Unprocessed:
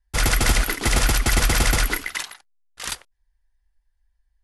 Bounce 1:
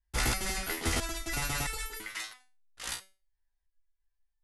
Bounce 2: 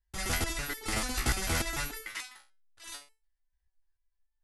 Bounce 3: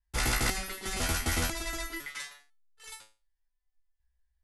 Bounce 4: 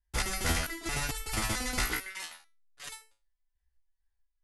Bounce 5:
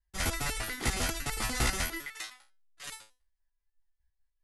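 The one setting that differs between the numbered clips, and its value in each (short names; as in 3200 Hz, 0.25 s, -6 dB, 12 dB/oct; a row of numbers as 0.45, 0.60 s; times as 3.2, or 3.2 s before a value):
stepped resonator, rate: 3, 6.8, 2, 4.5, 10 Hz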